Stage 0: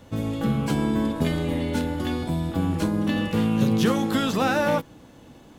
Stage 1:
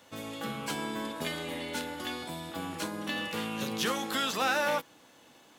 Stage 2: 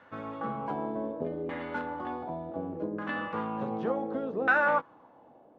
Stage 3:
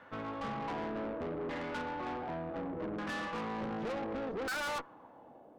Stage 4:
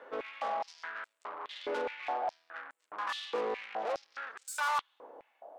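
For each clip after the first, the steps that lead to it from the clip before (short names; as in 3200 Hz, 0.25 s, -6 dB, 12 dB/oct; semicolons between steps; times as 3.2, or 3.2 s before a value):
HPF 1300 Hz 6 dB/oct
LFO low-pass saw down 0.67 Hz 410–1600 Hz
tube stage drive 38 dB, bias 0.5; gain +3 dB
stepped high-pass 4.8 Hz 440–7900 Hz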